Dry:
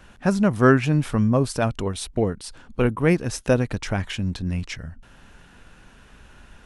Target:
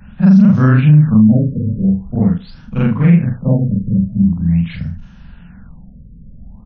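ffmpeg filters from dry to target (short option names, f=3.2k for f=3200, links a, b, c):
-filter_complex "[0:a]afftfilt=real='re':imag='-im':win_size=4096:overlap=0.75,lowshelf=f=260:t=q:w=3:g=10,acrossover=split=120|1200|1700[a][b][c][d];[a]acompressor=threshold=-30dB:ratio=16[e];[e][b][c][d]amix=inputs=4:normalize=0,aecho=1:1:78|156:0.141|0.0367,alimiter=level_in=7dB:limit=-1dB:release=50:level=0:latency=1,afftfilt=real='re*lt(b*sr/1024,550*pow(6700/550,0.5+0.5*sin(2*PI*0.44*pts/sr)))':imag='im*lt(b*sr/1024,550*pow(6700/550,0.5+0.5*sin(2*PI*0.44*pts/sr)))':win_size=1024:overlap=0.75,volume=-1dB"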